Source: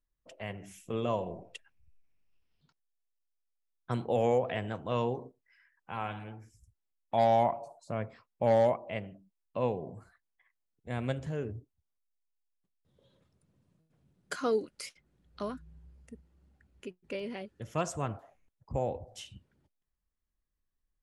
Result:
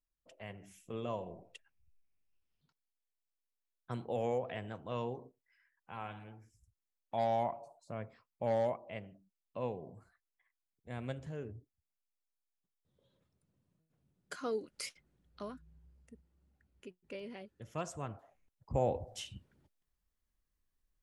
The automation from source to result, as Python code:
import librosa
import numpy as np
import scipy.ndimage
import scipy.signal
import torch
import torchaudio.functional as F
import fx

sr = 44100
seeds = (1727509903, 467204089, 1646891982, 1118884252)

y = fx.gain(x, sr, db=fx.line((14.62, -7.5), (14.83, 1.0), (15.45, -7.5), (18.15, -7.5), (18.89, 1.5)))